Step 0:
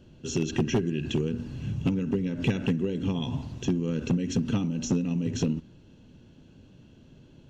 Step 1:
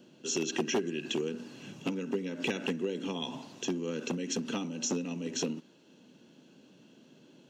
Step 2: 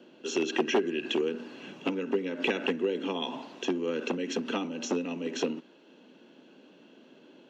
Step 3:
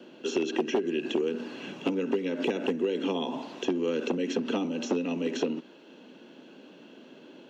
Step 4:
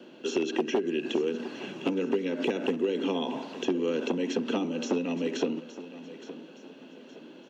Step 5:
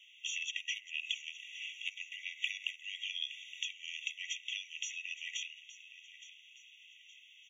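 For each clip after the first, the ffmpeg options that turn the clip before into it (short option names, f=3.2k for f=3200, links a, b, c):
-filter_complex "[0:a]highpass=f=170:w=0.5412,highpass=f=170:w=1.3066,bass=f=250:g=-13,treble=f=4k:g=4,acrossover=split=260|1900[a][b][c];[a]acompressor=mode=upward:threshold=-53dB:ratio=2.5[d];[d][b][c]amix=inputs=3:normalize=0"
-filter_complex "[0:a]acrossover=split=230 3700:gain=0.0708 1 0.158[a][b][c];[a][b][c]amix=inputs=3:normalize=0,volume=6dB"
-filter_complex "[0:a]acrossover=split=860|2500|5700[a][b][c][d];[a]acompressor=threshold=-29dB:ratio=4[e];[b]acompressor=threshold=-51dB:ratio=4[f];[c]acompressor=threshold=-47dB:ratio=4[g];[d]acompressor=threshold=-58dB:ratio=4[h];[e][f][g][h]amix=inputs=4:normalize=0,volume=5dB"
-af "aecho=1:1:867|1734|2601|3468:0.178|0.0711|0.0285|0.0114"
-af "afftfilt=real='re*eq(mod(floor(b*sr/1024/1900),2),1)':imag='im*eq(mod(floor(b*sr/1024/1900),2),1)':win_size=1024:overlap=0.75,volume=2dB"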